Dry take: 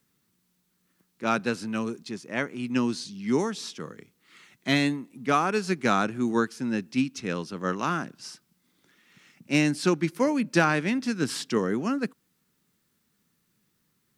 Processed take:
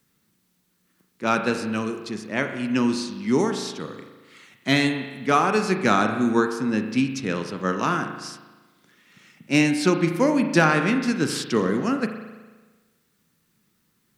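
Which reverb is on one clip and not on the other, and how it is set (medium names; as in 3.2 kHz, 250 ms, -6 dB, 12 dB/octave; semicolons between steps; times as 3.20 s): spring tank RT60 1.3 s, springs 37 ms, chirp 25 ms, DRR 6 dB; trim +3.5 dB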